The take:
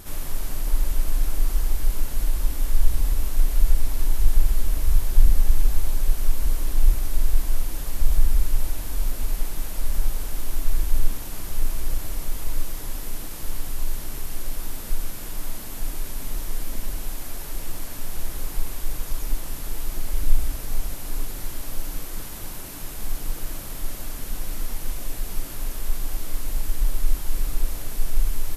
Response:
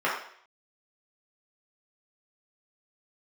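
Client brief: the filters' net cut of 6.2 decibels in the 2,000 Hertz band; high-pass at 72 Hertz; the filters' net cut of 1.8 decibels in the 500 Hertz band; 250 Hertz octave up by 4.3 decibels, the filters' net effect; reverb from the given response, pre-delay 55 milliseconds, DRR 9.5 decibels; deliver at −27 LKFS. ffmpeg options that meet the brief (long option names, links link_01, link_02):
-filter_complex "[0:a]highpass=72,equalizer=frequency=250:width_type=o:gain=7,equalizer=frequency=500:width_type=o:gain=-4.5,equalizer=frequency=2000:width_type=o:gain=-8,asplit=2[link_01][link_02];[1:a]atrim=start_sample=2205,adelay=55[link_03];[link_02][link_03]afir=irnorm=-1:irlink=0,volume=-24dB[link_04];[link_01][link_04]amix=inputs=2:normalize=0,volume=8.5dB"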